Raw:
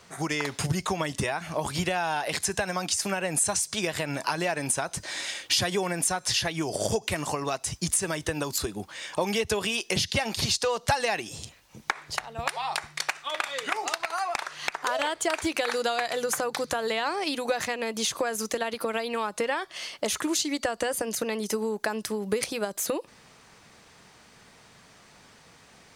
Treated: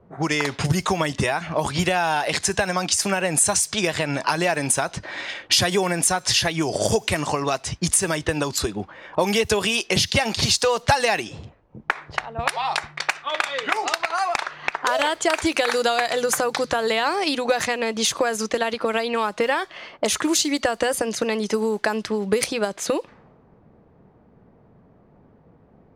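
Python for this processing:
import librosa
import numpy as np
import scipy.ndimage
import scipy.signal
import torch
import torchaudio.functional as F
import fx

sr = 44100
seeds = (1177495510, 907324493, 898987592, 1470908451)

y = fx.dmg_noise_colour(x, sr, seeds[0], colour='white', level_db=-63.0)
y = fx.env_lowpass(y, sr, base_hz=430.0, full_db=-24.0)
y = y * librosa.db_to_amplitude(6.5)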